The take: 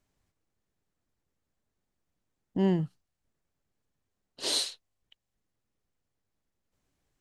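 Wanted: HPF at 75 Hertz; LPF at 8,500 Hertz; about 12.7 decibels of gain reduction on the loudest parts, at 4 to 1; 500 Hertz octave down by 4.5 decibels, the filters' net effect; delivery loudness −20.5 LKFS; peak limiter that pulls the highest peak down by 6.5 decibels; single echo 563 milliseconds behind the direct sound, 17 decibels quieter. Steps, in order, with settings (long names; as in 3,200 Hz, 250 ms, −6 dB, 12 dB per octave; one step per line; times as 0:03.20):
high-pass filter 75 Hz
low-pass filter 8,500 Hz
parametric band 500 Hz −7 dB
downward compressor 4 to 1, threshold −39 dBFS
brickwall limiter −33 dBFS
single-tap delay 563 ms −17 dB
level +25.5 dB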